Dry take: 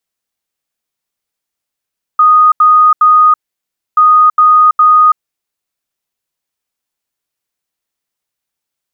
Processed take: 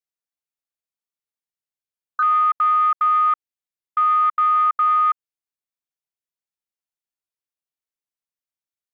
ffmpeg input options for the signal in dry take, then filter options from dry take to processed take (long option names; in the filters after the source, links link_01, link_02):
-f lavfi -i "aevalsrc='0.708*sin(2*PI*1240*t)*clip(min(mod(mod(t,1.78),0.41),0.33-mod(mod(t,1.78),0.41))/0.005,0,1)*lt(mod(t,1.78),1.23)':duration=3.56:sample_rate=44100"
-af "alimiter=limit=-13.5dB:level=0:latency=1:release=99,afwtdn=0.0708"